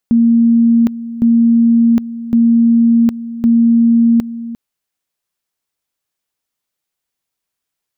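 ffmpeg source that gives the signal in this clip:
ffmpeg -f lavfi -i "aevalsrc='pow(10,(-6.5-15*gte(mod(t,1.11),0.76))/20)*sin(2*PI*232*t)':duration=4.44:sample_rate=44100" out.wav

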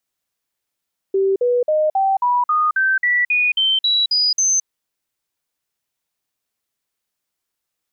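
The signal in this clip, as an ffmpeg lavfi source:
ffmpeg -f lavfi -i "aevalsrc='0.211*clip(min(mod(t,0.27),0.22-mod(t,0.27))/0.005,0,1)*sin(2*PI*388*pow(2,floor(t/0.27)/3)*mod(t,0.27))':duration=3.51:sample_rate=44100" out.wav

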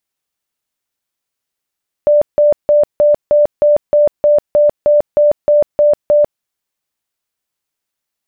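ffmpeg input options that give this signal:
ffmpeg -f lavfi -i "aevalsrc='0.501*sin(2*PI*591*mod(t,0.31))*lt(mod(t,0.31),86/591)':duration=4.34:sample_rate=44100" out.wav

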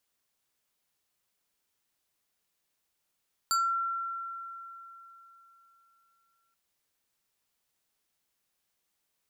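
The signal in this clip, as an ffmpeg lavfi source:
ffmpeg -f lavfi -i "aevalsrc='0.0708*pow(10,-3*t/3.54)*sin(2*PI*1360*t+1.4*pow(10,-3*t/0.28)*sin(2*PI*4.39*1360*t))':duration=3.03:sample_rate=44100" out.wav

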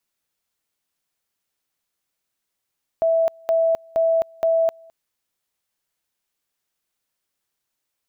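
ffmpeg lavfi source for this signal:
ffmpeg -f lavfi -i "aevalsrc='pow(10,(-15-28.5*gte(mod(t,0.47),0.26))/20)*sin(2*PI*657*t)':duration=1.88:sample_rate=44100" out.wav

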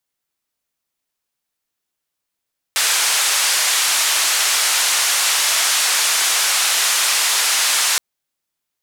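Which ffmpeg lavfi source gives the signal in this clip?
ffmpeg -f lavfi -i "anoisesrc=color=white:duration=5.22:sample_rate=44100:seed=1,highpass=frequency=930,lowpass=frequency=9200,volume=-8dB" out.wav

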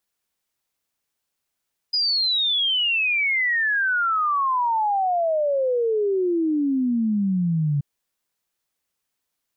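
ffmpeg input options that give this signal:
ffmpeg -f lavfi -i "aevalsrc='0.119*clip(min(t,5.88-t)/0.01,0,1)*sin(2*PI*5000*5.88/log(140/5000)*(exp(log(140/5000)*t/5.88)-1))':duration=5.88:sample_rate=44100" out.wav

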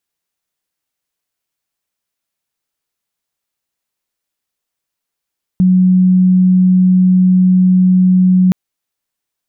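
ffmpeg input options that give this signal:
ffmpeg -f lavfi -i "aevalsrc='0.501*sin(2*PI*184*t)':duration=2.92:sample_rate=44100" out.wav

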